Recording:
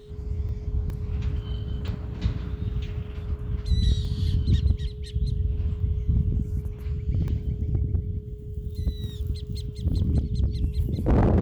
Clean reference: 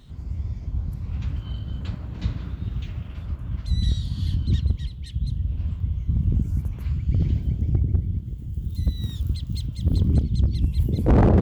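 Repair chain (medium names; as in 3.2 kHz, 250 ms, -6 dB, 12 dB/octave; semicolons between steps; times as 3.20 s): band-stop 420 Hz, Q 30; interpolate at 0.49/0.90/1.88/4.05/7.28 s, 1.5 ms; gain correction +4 dB, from 6.23 s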